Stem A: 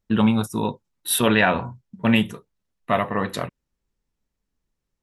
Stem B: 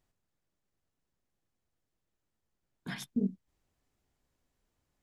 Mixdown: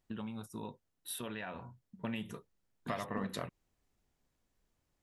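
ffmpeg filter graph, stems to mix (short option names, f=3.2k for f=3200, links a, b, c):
-filter_complex "[0:a]acompressor=threshold=-21dB:ratio=6,volume=-6.5dB,afade=t=in:st=1.83:d=0.52:silence=0.316228[a];[1:a]volume=28dB,asoftclip=hard,volume=-28dB,volume=-1.5dB[b];[a][b]amix=inputs=2:normalize=0,acompressor=threshold=-37dB:ratio=2.5"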